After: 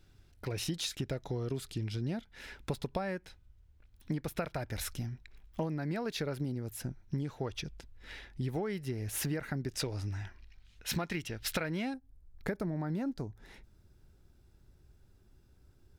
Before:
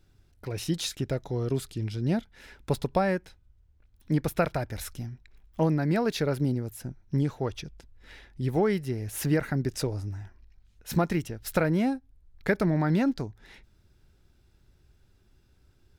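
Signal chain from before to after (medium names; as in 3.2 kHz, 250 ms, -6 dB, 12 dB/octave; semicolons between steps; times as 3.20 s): peaking EQ 2.9 kHz +3 dB 2.2 oct, from 9.80 s +11 dB, from 11.94 s -6 dB; compression 6:1, threshold -32 dBFS, peak gain reduction 14.5 dB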